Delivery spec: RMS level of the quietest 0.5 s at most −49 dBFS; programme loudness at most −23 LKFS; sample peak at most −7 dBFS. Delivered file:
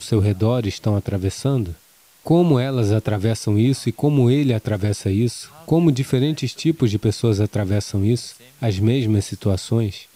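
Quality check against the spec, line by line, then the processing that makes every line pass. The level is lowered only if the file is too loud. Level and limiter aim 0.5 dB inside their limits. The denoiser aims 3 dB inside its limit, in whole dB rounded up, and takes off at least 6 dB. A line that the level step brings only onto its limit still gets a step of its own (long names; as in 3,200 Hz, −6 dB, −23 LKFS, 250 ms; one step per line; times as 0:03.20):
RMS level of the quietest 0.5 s −53 dBFS: in spec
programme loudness −20.0 LKFS: out of spec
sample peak −6.0 dBFS: out of spec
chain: level −3.5 dB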